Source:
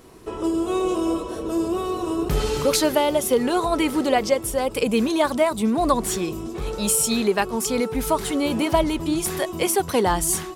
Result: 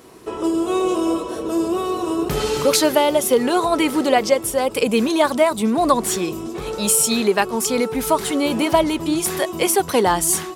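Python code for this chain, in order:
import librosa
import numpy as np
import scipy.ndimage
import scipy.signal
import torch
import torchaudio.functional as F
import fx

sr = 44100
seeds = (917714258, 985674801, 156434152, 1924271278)

y = fx.highpass(x, sr, hz=180.0, slope=6)
y = y * librosa.db_to_amplitude(4.0)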